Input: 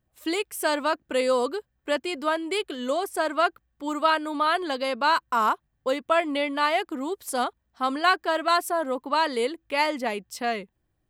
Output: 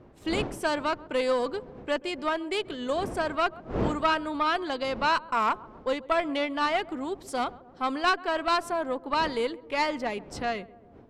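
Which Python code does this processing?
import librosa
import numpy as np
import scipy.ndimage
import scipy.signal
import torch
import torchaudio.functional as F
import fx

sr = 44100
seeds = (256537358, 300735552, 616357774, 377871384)

y = fx.dmg_wind(x, sr, seeds[0], corner_hz=430.0, level_db=-39.0)
y = scipy.signal.sosfilt(scipy.signal.butter(2, 6800.0, 'lowpass', fs=sr, output='sos'), y)
y = fx.echo_filtered(y, sr, ms=134, feedback_pct=72, hz=850.0, wet_db=-18.5)
y = fx.tube_stage(y, sr, drive_db=13.0, bias=0.55)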